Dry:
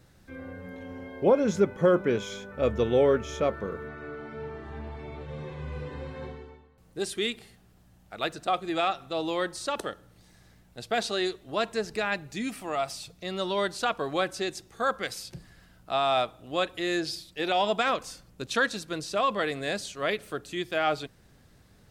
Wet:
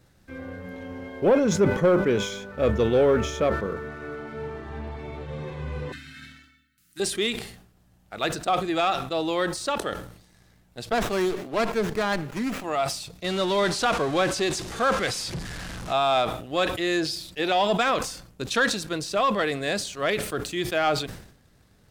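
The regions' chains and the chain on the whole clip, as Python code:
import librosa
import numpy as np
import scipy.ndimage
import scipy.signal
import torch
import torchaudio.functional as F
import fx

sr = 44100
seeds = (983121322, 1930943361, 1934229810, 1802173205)

y = fx.chain(x, sr, fx.brickwall_bandstop(low_hz=340.0, high_hz=1200.0),
    fx.tilt_eq(slope=3.5), at=(5.92, 7.0))
y = fx.chain(y, sr, fx.highpass(hz=140.0, slope=24),
    fx.running_max(window=9), at=(10.92, 12.64))
y = fx.chain(y, sr, fx.zero_step(step_db=-34.0),
    fx.lowpass(hz=9300.0, slope=12), at=(13.24, 15.93))
y = fx.leveller(y, sr, passes=1)
y = fx.sustainer(y, sr, db_per_s=82.0)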